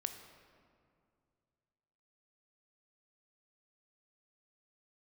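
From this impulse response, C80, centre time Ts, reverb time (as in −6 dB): 9.5 dB, 28 ms, 2.3 s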